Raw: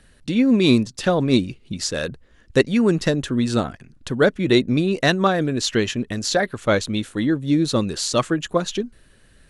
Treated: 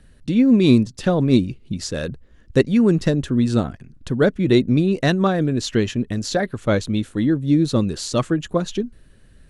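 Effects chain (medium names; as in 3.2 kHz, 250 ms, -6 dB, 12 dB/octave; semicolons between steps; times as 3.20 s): bass shelf 400 Hz +9.5 dB; trim -4.5 dB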